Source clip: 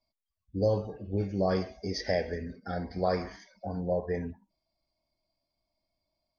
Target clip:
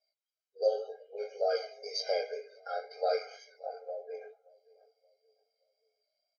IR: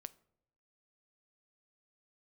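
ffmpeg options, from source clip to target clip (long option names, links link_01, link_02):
-filter_complex "[0:a]lowpass=frequency=5800:width=0.5412,lowpass=frequency=5800:width=1.3066,highshelf=frequency=4400:gain=10.5,acrossover=split=160[link_01][link_02];[link_02]aeval=exprs='0.2*(cos(1*acos(clip(val(0)/0.2,-1,1)))-cos(1*PI/2))+0.00631*(cos(2*acos(clip(val(0)/0.2,-1,1)))-cos(2*PI/2))':channel_layout=same[link_03];[link_01][link_03]amix=inputs=2:normalize=0,flanger=delay=17:depth=4.4:speed=2,asplit=3[link_04][link_05][link_06];[link_04]afade=type=out:start_time=3.79:duration=0.02[link_07];[link_05]acompressor=threshold=-38dB:ratio=6,afade=type=in:start_time=3.79:duration=0.02,afade=type=out:start_time=4.2:duration=0.02[link_08];[link_06]afade=type=in:start_time=4.2:duration=0.02[link_09];[link_07][link_08][link_09]amix=inputs=3:normalize=0,asplit=2[link_10][link_11];[link_11]adelay=575,lowpass=frequency=870:poles=1,volume=-20.5dB,asplit=2[link_12][link_13];[link_13]adelay=575,lowpass=frequency=870:poles=1,volume=0.47,asplit=2[link_14][link_15];[link_15]adelay=575,lowpass=frequency=870:poles=1,volume=0.47[link_16];[link_10][link_12][link_14][link_16]amix=inputs=4:normalize=0,afftfilt=real='re*eq(mod(floor(b*sr/1024/410),2),1)':imag='im*eq(mod(floor(b*sr/1024/410),2),1)':win_size=1024:overlap=0.75,volume=2dB"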